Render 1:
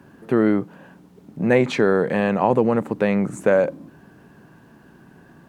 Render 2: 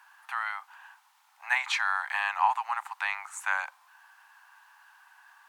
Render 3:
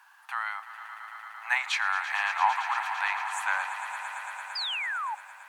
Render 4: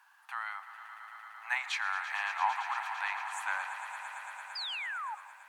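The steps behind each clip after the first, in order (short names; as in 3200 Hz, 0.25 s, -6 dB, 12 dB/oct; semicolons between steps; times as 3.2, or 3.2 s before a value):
steep high-pass 820 Hz 72 dB/oct
swelling echo 0.113 s, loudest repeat 5, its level -13.5 dB; painted sound fall, 4.55–5.15, 810–5100 Hz -32 dBFS
reverb RT60 0.50 s, pre-delay 0.123 s, DRR 15.5 dB; gain -6 dB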